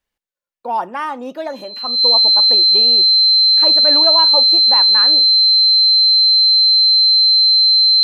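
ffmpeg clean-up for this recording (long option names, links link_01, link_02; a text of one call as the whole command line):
ffmpeg -i in.wav -af "bandreject=frequency=4100:width=30" out.wav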